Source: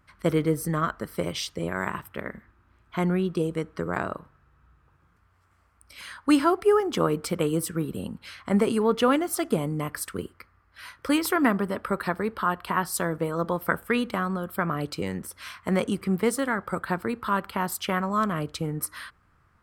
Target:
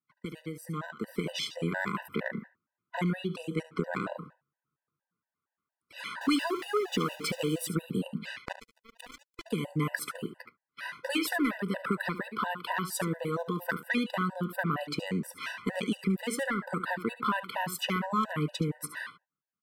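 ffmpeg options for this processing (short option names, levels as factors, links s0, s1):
-filter_complex "[0:a]asettb=1/sr,asplit=3[s0][s1][s2];[s0]atrim=end=6.214[s3];[s1]atrim=start=6.21:end=7.67,asetpts=PTS-STARTPTS,afade=t=in:d=0.004:c=qsin,afade=t=out:st=1.456:d=0.004:c=qsin,aeval=exprs='val(0)+0.5*0.0188*sgn(val(0))':c=same[s4];[s2]atrim=start=7.666[s5];[s3][s4]acrossfade=d=0.004:c1=hsin:c2=qsin[s6];[s6][s5]acrossfade=d=0.004:c1=qsin:c2=hsin,highpass=f=160:w=0.5412,highpass=f=160:w=1.3066,agate=range=0.0355:threshold=0.00282:ratio=16:detection=peak,bass=f=250:g=6,treble=f=4000:g=-11,acrossover=split=2100[s7][s8];[s7]acompressor=threshold=0.0251:ratio=20[s9];[s9][s8]amix=inputs=2:normalize=0,asoftclip=type=tanh:threshold=0.0891,asettb=1/sr,asplit=3[s10][s11][s12];[s10]atrim=end=8.384[s13];[s11]atrim=start=8.38:end=9.46,asetpts=PTS-STARTPTS,afade=t=in:d=0.004:c=qsin,afade=t=out:st=1.076:d=0.004:c=qsin,acrusher=bits=3:mix=0:aa=0.5[s14];[s12]atrim=start=9.456[s15];[s13][s14]acrossfade=d=0.004:c1=hsin:c2=qsin[s16];[s16][s15]acrossfade=d=0.004:c1=qsin:c2=hsin,dynaudnorm=f=290:g=7:m=2.99,aecho=1:1:72:0.224,afftfilt=real='re*gt(sin(2*PI*4.3*pts/sr)*(1-2*mod(floor(b*sr/1024/500),2)),0)':imag='im*gt(sin(2*PI*4.3*pts/sr)*(1-2*mod(floor(b*sr/1024/500),2)),0)':win_size=1024:overlap=0.75,volume=0.841"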